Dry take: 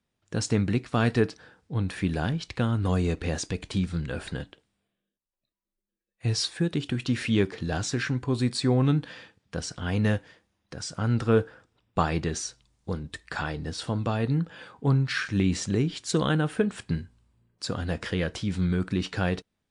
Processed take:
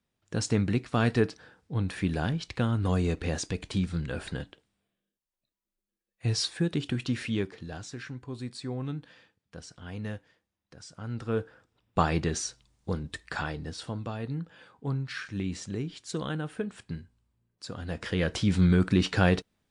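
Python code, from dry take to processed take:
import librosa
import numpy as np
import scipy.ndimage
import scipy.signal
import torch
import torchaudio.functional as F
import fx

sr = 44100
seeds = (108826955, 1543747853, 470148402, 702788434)

y = fx.gain(x, sr, db=fx.line((6.96, -1.5), (7.84, -12.0), (11.01, -12.0), (12.01, 0.0), (13.23, 0.0), (14.13, -8.5), (17.72, -8.5), (18.42, 4.0)))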